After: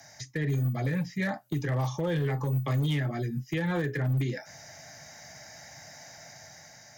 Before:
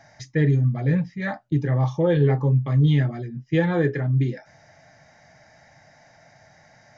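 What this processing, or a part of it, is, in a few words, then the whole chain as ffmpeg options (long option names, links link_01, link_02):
FM broadcast chain: -filter_complex "[0:a]highpass=41,dynaudnorm=framelen=240:gausssize=7:maxgain=5dB,acrossover=split=83|300|730|2900[link_01][link_02][link_03][link_04][link_05];[link_01]acompressor=threshold=-35dB:ratio=4[link_06];[link_02]acompressor=threshold=-25dB:ratio=4[link_07];[link_03]acompressor=threshold=-31dB:ratio=4[link_08];[link_04]acompressor=threshold=-31dB:ratio=4[link_09];[link_05]acompressor=threshold=-55dB:ratio=4[link_10];[link_06][link_07][link_08][link_09][link_10]amix=inputs=5:normalize=0,aemphasis=mode=production:type=50fm,alimiter=limit=-17.5dB:level=0:latency=1:release=128,asoftclip=type=hard:threshold=-19.5dB,lowpass=frequency=15000:width=0.5412,lowpass=frequency=15000:width=1.3066,aemphasis=mode=production:type=50fm,volume=-2.5dB"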